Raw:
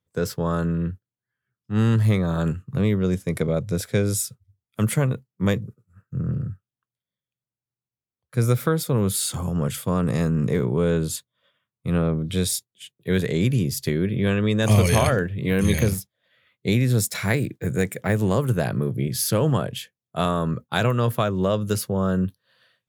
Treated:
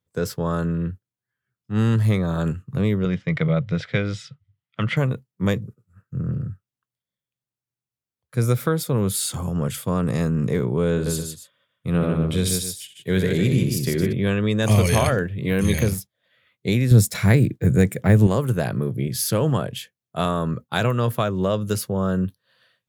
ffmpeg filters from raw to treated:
-filter_complex "[0:a]asettb=1/sr,asplit=3[s0][s1][s2];[s0]atrim=end=3.054[s3];[s1]atrim=start=3.05:end=4.97,asetpts=PTS-STARTPTS,afade=t=in:d=0.004:c=qsin,afade=t=out:st=1.916:d=0.004:c=qsin,highpass=110,equalizer=f=150:t=q:w=4:g=10,equalizer=f=230:t=q:w=4:g=-7,equalizer=f=390:t=q:w=4:g=-7,equalizer=f=1300:t=q:w=4:g=5,equalizer=f=2000:t=q:w=4:g=9,equalizer=f=3000:t=q:w=4:g=8,lowpass=f=4500:w=0.5412,lowpass=f=4500:w=1.3066[s4];[s2]atrim=start=4.966[s5];[s3][s4]acrossfade=d=0.004:c1=hsin:c2=qsin[s6];[s6][s5]acrossfade=d=0.004:c1=qsin:c2=hsin,asettb=1/sr,asplit=3[s7][s8][s9];[s7]atrim=end=10.914[s10];[s8]atrim=start=10.91:end=14.13,asetpts=PTS-STARTPTS,afade=t=in:d=0.004:c=qsin,afade=t=out:st=3.216:d=0.004:c=qsin,aecho=1:1:64|150|273:0.355|0.596|0.211,atrim=end_sample=142002[s11];[s9]atrim=start=14.126[s12];[s10][s11]acrossfade=d=0.004:c1=hsin:c2=qsin[s13];[s13][s12]acrossfade=d=0.004:c1=qsin:c2=hsin,asettb=1/sr,asplit=3[s14][s15][s16];[s14]atrim=end=16.914[s17];[s15]atrim=start=16.91:end=18.27,asetpts=PTS-STARTPTS,afade=t=in:d=0.004:c=qsin,afade=t=out:st=1.356:d=0.004:c=qsin,lowshelf=f=310:g=10[s18];[s16]atrim=start=18.266[s19];[s17][s18]acrossfade=d=0.004:c1=hsin:c2=qsin[s20];[s20][s19]acrossfade=d=0.004:c1=qsin:c2=hsin"

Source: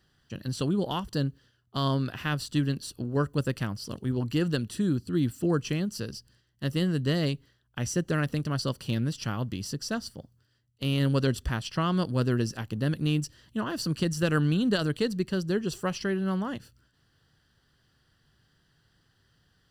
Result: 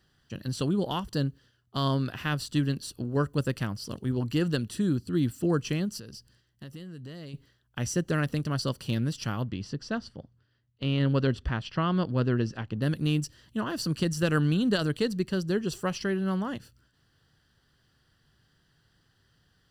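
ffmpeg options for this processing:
-filter_complex "[0:a]asplit=3[s0][s1][s2];[s0]afade=t=out:st=5.98:d=0.02[s3];[s1]acompressor=threshold=0.01:ratio=6:attack=3.2:release=140:knee=1:detection=peak,afade=t=in:st=5.98:d=0.02,afade=t=out:st=7.33:d=0.02[s4];[s2]afade=t=in:st=7.33:d=0.02[s5];[s3][s4][s5]amix=inputs=3:normalize=0,asettb=1/sr,asplit=3[s6][s7][s8];[s6]atrim=end=9.434[s9];[s7]atrim=start=9.43:end=12.82,asetpts=PTS-STARTPTS,afade=t=in:d=0.004:c=qsin,afade=t=out:st=3.386:d=0.004:c=qsin,lowpass=3500[s10];[s8]atrim=start=12.816[s11];[s9][s10]acrossfade=d=0.004:c1=hsin:c2=qsin[s12];[s12][s11]acrossfade=d=0.004:c1=qsin:c2=hsin"

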